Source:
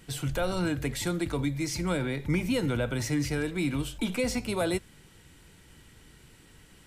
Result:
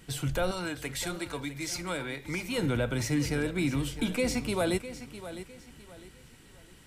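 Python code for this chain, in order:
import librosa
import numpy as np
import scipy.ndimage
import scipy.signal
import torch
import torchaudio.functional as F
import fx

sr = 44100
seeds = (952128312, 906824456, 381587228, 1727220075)

y = fx.low_shelf(x, sr, hz=390.0, db=-12.0, at=(0.51, 2.58))
y = fx.echo_feedback(y, sr, ms=656, feedback_pct=32, wet_db=-13)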